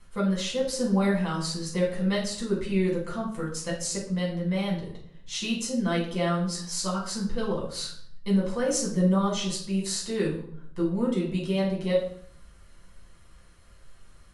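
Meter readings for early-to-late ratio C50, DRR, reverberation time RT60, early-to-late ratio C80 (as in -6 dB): 5.5 dB, -4.5 dB, 0.65 s, 10.0 dB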